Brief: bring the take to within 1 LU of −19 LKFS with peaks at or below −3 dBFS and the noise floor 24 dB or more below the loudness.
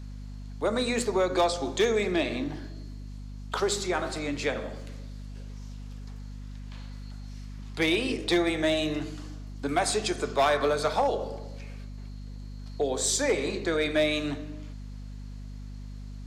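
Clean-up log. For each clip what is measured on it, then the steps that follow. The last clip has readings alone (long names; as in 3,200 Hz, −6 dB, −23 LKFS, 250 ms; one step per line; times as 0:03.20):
share of clipped samples 0.4%; peaks flattened at −17.5 dBFS; mains hum 50 Hz; hum harmonics up to 250 Hz; level of the hum −37 dBFS; integrated loudness −27.5 LKFS; sample peak −17.5 dBFS; target loudness −19.0 LKFS
→ clipped peaks rebuilt −17.5 dBFS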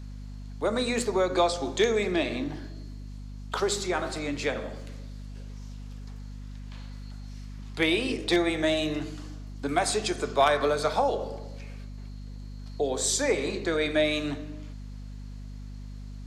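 share of clipped samples 0.0%; mains hum 50 Hz; hum harmonics up to 250 Hz; level of the hum −37 dBFS
→ hum removal 50 Hz, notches 5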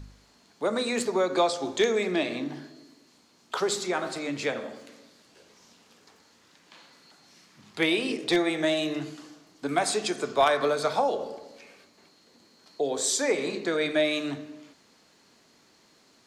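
mains hum none found; integrated loudness −27.0 LKFS; sample peak −8.5 dBFS; target loudness −19.0 LKFS
→ level +8 dB
brickwall limiter −3 dBFS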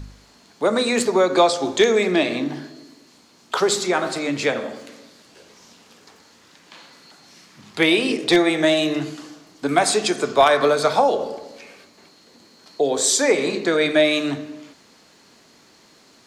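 integrated loudness −19.5 LKFS; sample peak −3.0 dBFS; background noise floor −53 dBFS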